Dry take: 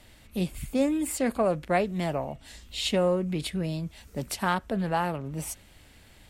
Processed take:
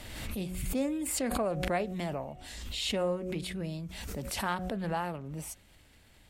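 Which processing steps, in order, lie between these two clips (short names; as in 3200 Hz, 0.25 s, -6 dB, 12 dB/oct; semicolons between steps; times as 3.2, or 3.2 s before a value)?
de-hum 183.2 Hz, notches 4; backwards sustainer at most 34 dB/s; gain -6.5 dB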